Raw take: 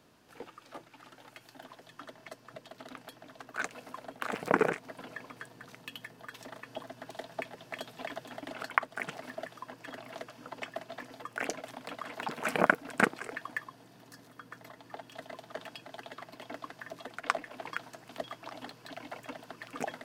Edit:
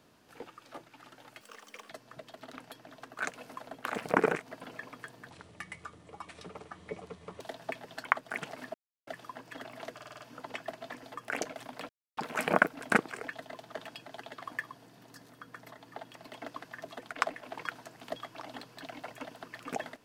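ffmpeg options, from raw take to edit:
-filter_complex "[0:a]asplit=17[s0][s1][s2][s3][s4][s5][s6][s7][s8][s9][s10][s11][s12][s13][s14][s15][s16];[s0]atrim=end=1.414[s17];[s1]atrim=start=1.41:end=2.27,asetpts=PTS-STARTPTS,asetrate=77616,aresample=44100[s18];[s2]atrim=start=2.266:end=5.674[s19];[s3]atrim=start=5.67:end=7.1,asetpts=PTS-STARTPTS,asetrate=29988,aresample=44100[s20];[s4]atrim=start=7.096:end=7.672[s21];[s5]atrim=start=8.628:end=9.4,asetpts=PTS-STARTPTS,afade=t=out:st=0.768:d=0.004:c=hsin,apad=pad_dur=0.33[s22];[s6]atrim=start=9.4:end=10.322,asetpts=PTS-STARTPTS,afade=t=in:d=0.004:c=hsin[s23];[s7]atrim=start=10.268:end=10.322[s24];[s8]atrim=start=10.268:end=10.322[s25];[s9]atrim=start=10.268:end=10.322[s26];[s10]atrim=start=10.268:end=10.322[s27];[s11]atrim=start=10.268:end=11.97,asetpts=PTS-STARTPTS,afade=t=out:st=1.698:d=0.004:c=hsin[s28];[s12]atrim=start=11.97:end=12.25,asetpts=PTS-STARTPTS,volume=0[s29];[s13]atrim=start=12.25:end=13.412,asetpts=PTS-STARTPTS,afade=t=in:d=0.004:c=hsin[s30];[s14]atrim=start=15.128:end=16.232[s31];[s15]atrim=start=13.408:end=15.132[s32];[s16]atrim=start=16.228[s33];[s17][s18]acrossfade=d=0.004:c1=hsin:c2=hsin[s34];[s34][s19]acrossfade=d=0.004:c1=hsin:c2=hsin[s35];[s35][s20]acrossfade=d=0.004:c1=hsin:c2=hsin[s36];[s36][s21]acrossfade=d=0.004:c1=hsin:c2=hsin[s37];[s22][s23]concat=n=2:v=0:a=1[s38];[s37][s38]acrossfade=d=0.004:c1=hsin:c2=hsin[s39];[s39][s24]acrossfade=d=0.004:c1=hsin:c2=hsin[s40];[s40][s25]acrossfade=d=0.004:c1=hsin:c2=hsin[s41];[s41][s26]acrossfade=d=0.004:c1=hsin:c2=hsin[s42];[s42][s27]acrossfade=d=0.004:c1=hsin:c2=hsin[s43];[s28][s29][s30]concat=n=3:v=0:a=1[s44];[s43][s44]acrossfade=d=0.004:c1=hsin:c2=hsin[s45];[s45][s31]acrossfade=d=0.004:c1=hsin:c2=hsin[s46];[s46][s32]acrossfade=d=0.004:c1=hsin:c2=hsin[s47];[s47][s33]acrossfade=d=0.004:c1=hsin:c2=hsin"

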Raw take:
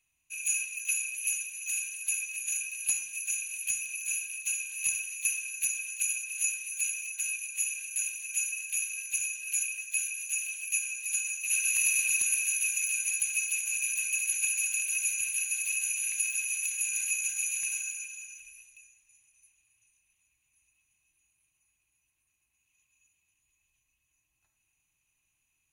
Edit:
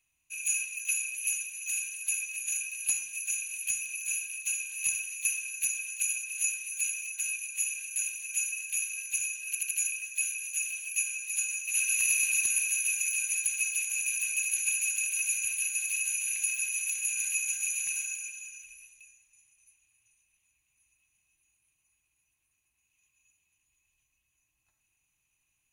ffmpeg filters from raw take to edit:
-filter_complex "[0:a]asplit=4[s0][s1][s2][s3];[s0]atrim=end=9.552[s4];[s1]atrim=start=9.468:end=9.552[s5];[s2]atrim=start=9.468:end=9.552[s6];[s3]atrim=start=9.468[s7];[s4][s5]acrossfade=d=0.004:c1=hsin:c2=hsin[s8];[s8][s6]acrossfade=d=0.004:c1=hsin:c2=hsin[s9];[s9][s7]acrossfade=d=0.004:c1=hsin:c2=hsin"

